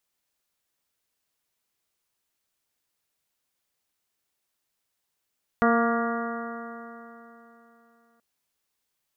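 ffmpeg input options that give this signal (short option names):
-f lavfi -i "aevalsrc='0.0891*pow(10,-3*t/3.32)*sin(2*PI*231.12*t)+0.0631*pow(10,-3*t/3.32)*sin(2*PI*462.92*t)+0.0668*pow(10,-3*t/3.32)*sin(2*PI*696.11*t)+0.0237*pow(10,-3*t/3.32)*sin(2*PI*931.36*t)+0.0631*pow(10,-3*t/3.32)*sin(2*PI*1169.35*t)+0.0531*pow(10,-3*t/3.32)*sin(2*PI*1410.73*t)+0.02*pow(10,-3*t/3.32)*sin(2*PI*1656.14*t)+0.0211*pow(10,-3*t/3.32)*sin(2*PI*1906.22*t)':d=2.58:s=44100"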